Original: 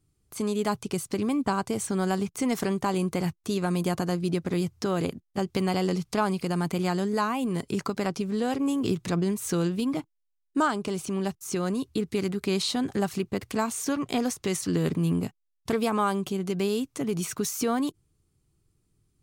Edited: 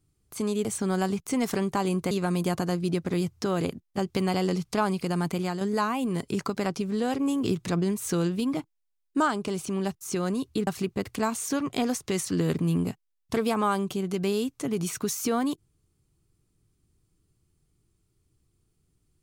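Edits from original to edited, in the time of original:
0:00.65–0:01.74: remove
0:03.20–0:03.51: remove
0:06.69–0:07.01: fade out, to −6 dB
0:12.07–0:13.03: remove

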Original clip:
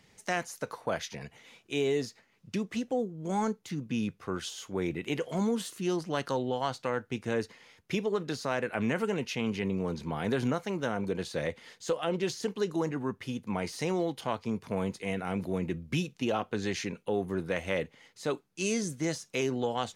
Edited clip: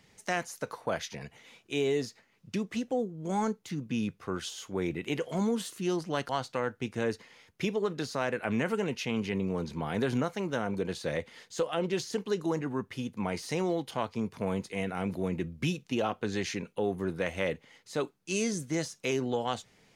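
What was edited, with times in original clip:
0:06.29–0:06.59: remove

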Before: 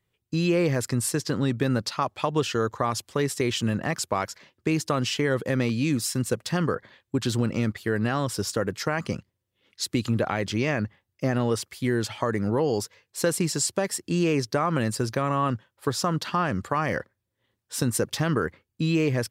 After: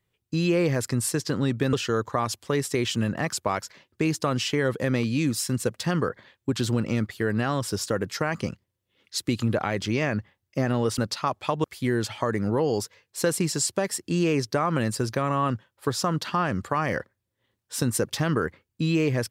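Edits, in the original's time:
0:01.73–0:02.39: move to 0:11.64

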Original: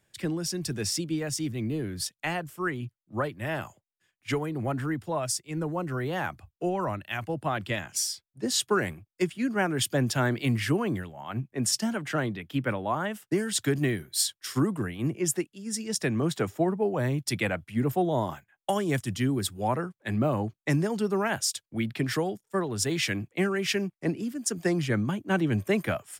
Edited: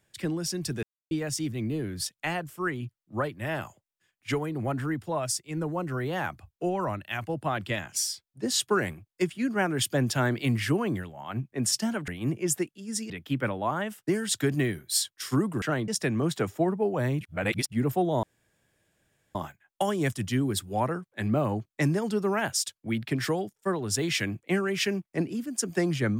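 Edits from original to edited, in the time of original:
0:00.83–0:01.11: silence
0:12.08–0:12.34: swap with 0:14.86–0:15.88
0:17.21–0:17.72: reverse
0:18.23: splice in room tone 1.12 s

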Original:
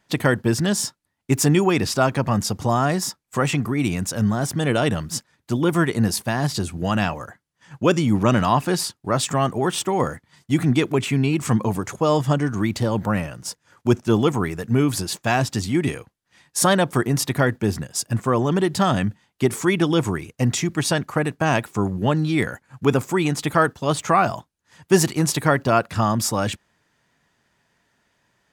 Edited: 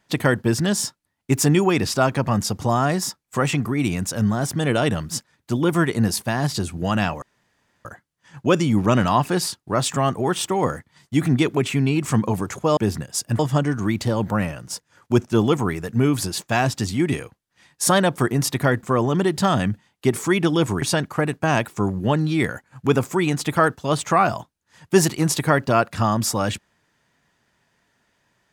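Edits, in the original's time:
0:07.22: splice in room tone 0.63 s
0:17.58–0:18.20: move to 0:12.14
0:20.19–0:20.80: remove

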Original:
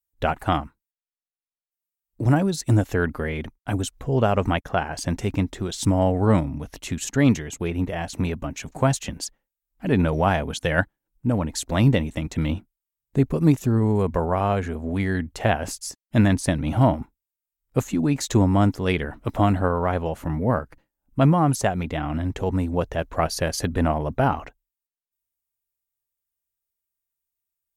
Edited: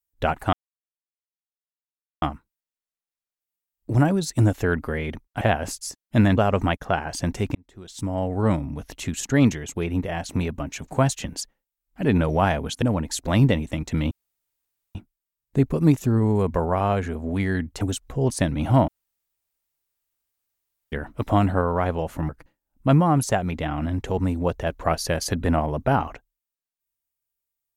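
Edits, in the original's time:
0:00.53: splice in silence 1.69 s
0:03.72–0:04.21: swap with 0:15.41–0:16.37
0:05.39–0:06.66: fade in
0:10.66–0:11.26: remove
0:12.55: splice in room tone 0.84 s
0:16.95–0:18.99: fill with room tone
0:20.36–0:20.61: remove

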